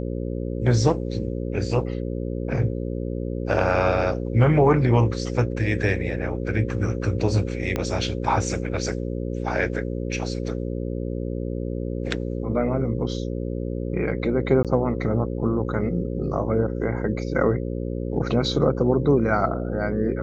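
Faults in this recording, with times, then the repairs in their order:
buzz 60 Hz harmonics 9 -28 dBFS
7.76 s: pop -11 dBFS
14.63–14.65 s: dropout 17 ms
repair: de-click; de-hum 60 Hz, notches 9; interpolate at 14.63 s, 17 ms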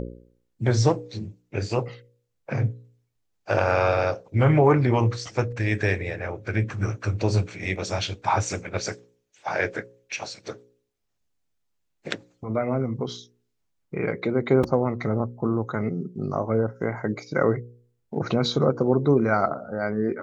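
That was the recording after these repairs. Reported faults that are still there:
7.76 s: pop

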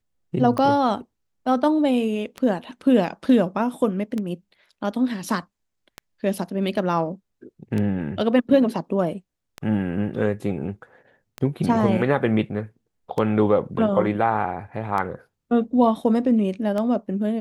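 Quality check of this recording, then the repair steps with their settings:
tick 33 1/3 rpm -15 dBFS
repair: de-click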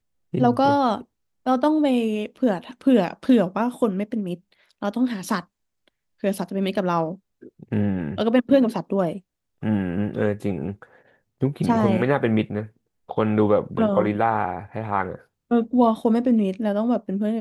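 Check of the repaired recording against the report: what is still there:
nothing left

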